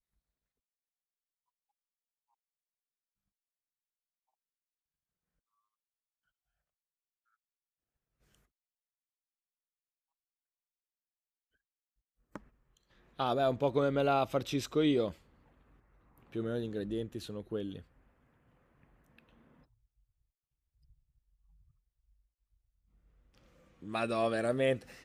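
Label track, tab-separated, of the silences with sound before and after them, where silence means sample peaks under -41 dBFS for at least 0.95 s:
15.120000	16.350000	silence
17.790000	23.820000	silence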